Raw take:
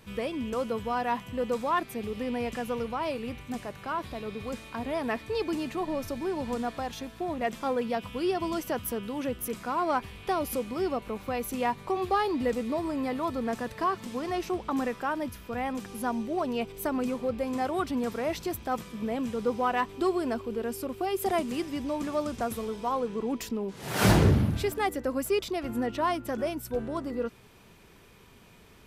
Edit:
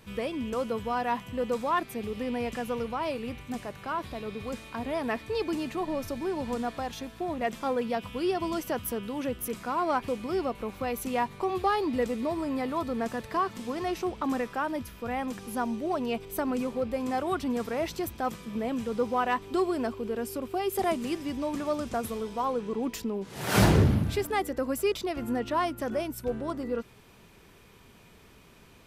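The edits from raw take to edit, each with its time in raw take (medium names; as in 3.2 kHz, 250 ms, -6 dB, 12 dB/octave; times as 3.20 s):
10.08–10.55 s: delete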